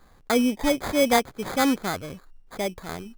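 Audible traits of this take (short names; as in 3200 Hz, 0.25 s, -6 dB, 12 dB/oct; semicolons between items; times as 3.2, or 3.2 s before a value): aliases and images of a low sample rate 2800 Hz, jitter 0%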